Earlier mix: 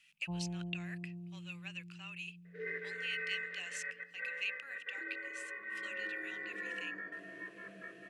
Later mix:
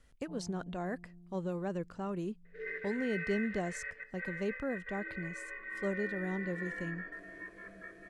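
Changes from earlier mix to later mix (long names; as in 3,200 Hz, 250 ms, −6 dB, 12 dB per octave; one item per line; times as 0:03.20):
speech: remove high-pass with resonance 2,600 Hz, resonance Q 11
first sound −9.5 dB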